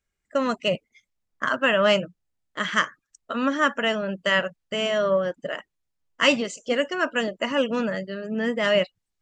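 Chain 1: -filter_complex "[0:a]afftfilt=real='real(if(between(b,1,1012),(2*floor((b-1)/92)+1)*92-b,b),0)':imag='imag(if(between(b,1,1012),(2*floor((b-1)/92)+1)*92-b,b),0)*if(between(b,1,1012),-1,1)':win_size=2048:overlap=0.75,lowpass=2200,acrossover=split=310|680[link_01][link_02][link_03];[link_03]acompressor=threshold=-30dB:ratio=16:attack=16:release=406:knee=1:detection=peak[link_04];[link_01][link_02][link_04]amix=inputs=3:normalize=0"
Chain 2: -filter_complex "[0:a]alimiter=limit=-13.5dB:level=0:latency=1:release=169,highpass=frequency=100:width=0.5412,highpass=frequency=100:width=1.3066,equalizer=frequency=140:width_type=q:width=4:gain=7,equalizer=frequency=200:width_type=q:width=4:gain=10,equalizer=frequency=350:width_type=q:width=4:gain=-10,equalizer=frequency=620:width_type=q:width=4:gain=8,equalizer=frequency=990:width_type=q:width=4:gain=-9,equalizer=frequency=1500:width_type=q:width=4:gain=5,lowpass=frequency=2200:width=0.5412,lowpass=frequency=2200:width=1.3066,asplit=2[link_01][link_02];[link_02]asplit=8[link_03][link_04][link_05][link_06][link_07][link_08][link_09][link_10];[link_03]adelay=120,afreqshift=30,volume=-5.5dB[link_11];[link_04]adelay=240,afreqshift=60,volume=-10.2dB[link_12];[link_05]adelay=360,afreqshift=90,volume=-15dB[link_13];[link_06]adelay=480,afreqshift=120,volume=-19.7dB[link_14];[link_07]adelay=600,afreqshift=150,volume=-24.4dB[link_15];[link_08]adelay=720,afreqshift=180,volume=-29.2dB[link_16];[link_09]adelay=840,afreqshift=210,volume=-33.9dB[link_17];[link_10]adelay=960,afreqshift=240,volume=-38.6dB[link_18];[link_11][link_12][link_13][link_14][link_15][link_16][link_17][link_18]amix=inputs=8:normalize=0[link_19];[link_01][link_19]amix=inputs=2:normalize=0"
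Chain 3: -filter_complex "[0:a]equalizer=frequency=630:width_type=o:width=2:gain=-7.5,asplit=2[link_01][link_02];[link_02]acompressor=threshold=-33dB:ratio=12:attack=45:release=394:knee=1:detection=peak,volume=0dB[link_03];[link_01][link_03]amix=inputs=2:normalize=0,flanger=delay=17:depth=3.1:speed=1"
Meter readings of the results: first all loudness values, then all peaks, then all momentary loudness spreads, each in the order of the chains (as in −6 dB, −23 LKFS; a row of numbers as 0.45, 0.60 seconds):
−30.5, −21.5, −28.0 LKFS; −11.5, −5.5, −9.0 dBFS; 8, 13, 10 LU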